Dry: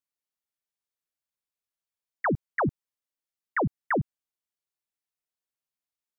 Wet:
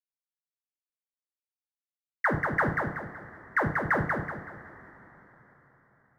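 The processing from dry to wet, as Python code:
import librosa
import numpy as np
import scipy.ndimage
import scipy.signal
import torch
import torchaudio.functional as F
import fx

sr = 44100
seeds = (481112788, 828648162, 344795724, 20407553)

p1 = fx.high_shelf(x, sr, hz=2200.0, db=-12.0)
p2 = fx.over_compress(p1, sr, threshold_db=-28.0, ratio=-0.5)
p3 = np.sign(p2) * np.maximum(np.abs(p2) - 10.0 ** (-54.0 / 20.0), 0.0)
p4 = p3 + fx.echo_feedback(p3, sr, ms=188, feedback_pct=36, wet_db=-4.0, dry=0)
p5 = fx.rev_double_slope(p4, sr, seeds[0], early_s=0.51, late_s=4.6, knee_db=-19, drr_db=2.5)
y = p5 * 10.0 ** (3.5 / 20.0)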